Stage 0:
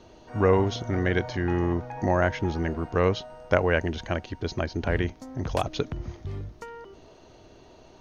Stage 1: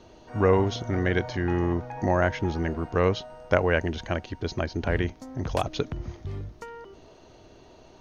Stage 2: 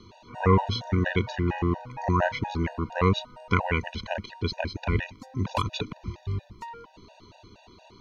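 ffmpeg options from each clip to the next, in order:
ffmpeg -i in.wav -af anull out.wav
ffmpeg -i in.wav -af "equalizer=frequency=100:width_type=o:width=0.33:gain=7,equalizer=frequency=200:width_type=o:width=0.33:gain=8,equalizer=frequency=500:width_type=o:width=0.33:gain=-4,equalizer=frequency=1000:width_type=o:width=0.33:gain=10,equalizer=frequency=2500:width_type=o:width=0.33:gain=9,equalizer=frequency=4000:width_type=o:width=0.33:gain=10,afftfilt=real='re*gt(sin(2*PI*4.3*pts/sr)*(1-2*mod(floor(b*sr/1024/490),2)),0)':imag='im*gt(sin(2*PI*4.3*pts/sr)*(1-2*mod(floor(b*sr/1024/490),2)),0)':win_size=1024:overlap=0.75" out.wav

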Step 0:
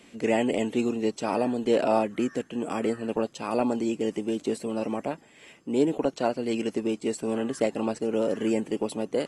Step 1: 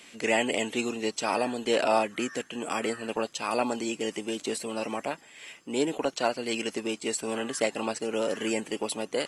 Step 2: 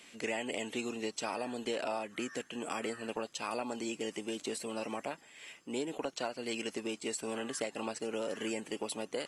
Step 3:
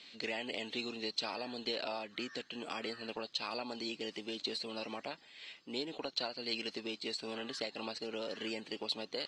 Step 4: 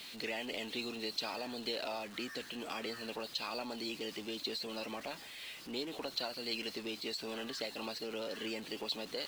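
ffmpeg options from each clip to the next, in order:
ffmpeg -i in.wav -af "tiltshelf=frequency=740:gain=-7.5" out.wav
ffmpeg -i in.wav -af "acompressor=threshold=-27dB:ratio=6,volume=-5dB" out.wav
ffmpeg -i in.wav -af "lowpass=frequency=4200:width_type=q:width=6.3,volume=-4.5dB" out.wav
ffmpeg -i in.wav -af "aeval=exprs='val(0)+0.5*0.00596*sgn(val(0))':channel_layout=same,volume=-2dB" out.wav

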